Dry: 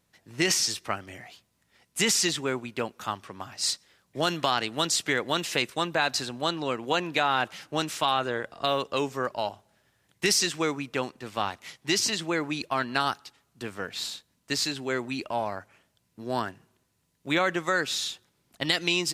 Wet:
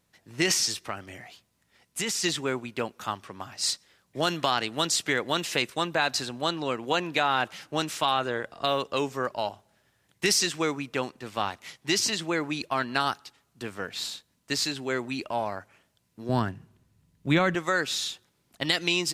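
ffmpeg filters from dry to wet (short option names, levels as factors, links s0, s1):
-filter_complex "[0:a]asettb=1/sr,asplit=3[s0][s1][s2];[s0]atrim=end=0.824[s3];[s1]atrim=start=0.82:end=2.24,asetpts=PTS-STARTPTS,afade=t=in:d=0.004:c=qsin,afade=t=out:st=1.416:d=0.004:c=qsin,acompressor=threshold=0.0398:ratio=2.5:attack=3.2:release=140:knee=1:detection=peak[s4];[s2]atrim=start=2.236[s5];[s3][s4]acrossfade=d=0.004:c1=hsin:c2=qsin[s6];[s6][s5]acrossfade=d=0.004:c1=qsin:c2=hsin,asettb=1/sr,asplit=3[s7][s8][s9];[s7]atrim=end=16.294[s10];[s8]atrim=start=16.29:end=17.55,asetpts=PTS-STARTPTS,afade=t=in:d=0.004:c=qsin,afade=t=out:st=1.256:d=0.004:c=qsin,bass=f=250:g=13,treble=f=4000:g=-3[s11];[s9]atrim=start=17.546[s12];[s10][s11]acrossfade=d=0.004:c1=hsin:c2=qsin[s13];[s13][s12]acrossfade=d=0.004:c1=qsin:c2=hsin"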